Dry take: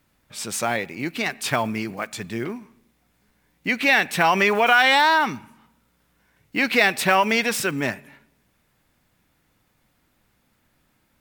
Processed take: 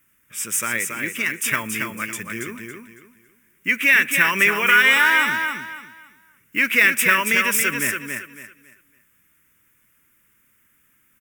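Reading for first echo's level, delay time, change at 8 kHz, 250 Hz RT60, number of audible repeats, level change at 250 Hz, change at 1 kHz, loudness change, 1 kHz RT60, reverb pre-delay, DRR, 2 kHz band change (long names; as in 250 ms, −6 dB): −5.5 dB, 278 ms, +7.0 dB, no reverb audible, 3, −3.5 dB, −4.5 dB, +2.5 dB, no reverb audible, no reverb audible, no reverb audible, +5.0 dB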